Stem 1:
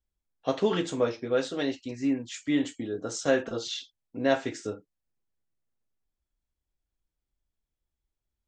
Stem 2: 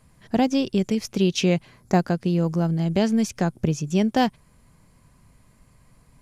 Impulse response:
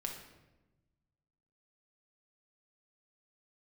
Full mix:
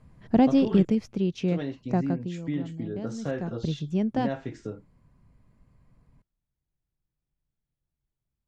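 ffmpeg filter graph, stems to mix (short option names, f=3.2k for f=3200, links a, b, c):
-filter_complex "[0:a]equalizer=f=140:w=1.4:g=14,acompressor=threshold=-29dB:ratio=2,volume=-3dB,asplit=3[a][b][c];[a]atrim=end=0.85,asetpts=PTS-STARTPTS,afade=t=out:st=0.846:d=0.004:c=hsin[d];[b]atrim=start=0.85:end=1.48,asetpts=PTS-STARTPTS,volume=0[e];[c]atrim=start=1.48,asetpts=PTS-STARTPTS,afade=t=in:d=0.004:c=hsin[f];[d][e][f]concat=n=3:v=0:a=1[g];[1:a]lowshelf=f=430:g=6,volume=7.5dB,afade=t=out:st=0.76:d=0.44:silence=0.421697,afade=t=out:st=2.13:d=0.24:silence=0.298538,afade=t=in:st=3.18:d=0.67:silence=0.281838[h];[g][h]amix=inputs=2:normalize=0,aemphasis=mode=reproduction:type=75fm"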